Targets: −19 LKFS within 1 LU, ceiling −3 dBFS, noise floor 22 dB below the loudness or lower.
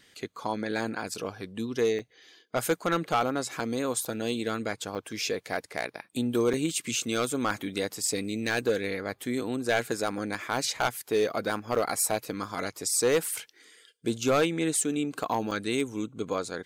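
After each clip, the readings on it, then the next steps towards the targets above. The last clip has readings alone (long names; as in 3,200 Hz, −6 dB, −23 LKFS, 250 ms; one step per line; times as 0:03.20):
share of clipped samples 0.4%; peaks flattened at −17.5 dBFS; number of dropouts 7; longest dropout 4.8 ms; integrated loudness −29.5 LKFS; sample peak −17.5 dBFS; target loudness −19.0 LKFS
→ clipped peaks rebuilt −17.5 dBFS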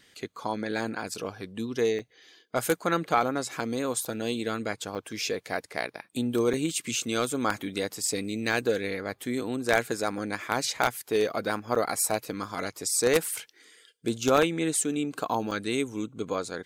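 share of clipped samples 0.0%; number of dropouts 7; longest dropout 4.8 ms
→ repair the gap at 0:01.14/0:01.99/0:04.05/0:04.95/0:06.53/0:11.75/0:15.51, 4.8 ms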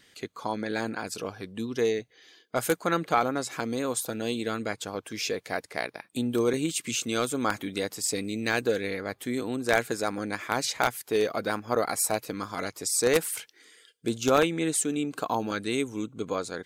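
number of dropouts 0; integrated loudness −29.0 LKFS; sample peak −8.5 dBFS; target loudness −19.0 LKFS
→ level +10 dB
brickwall limiter −3 dBFS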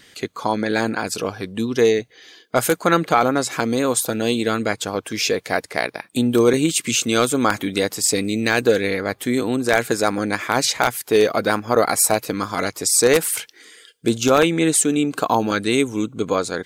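integrated loudness −19.5 LKFS; sample peak −3.0 dBFS; background noise floor −54 dBFS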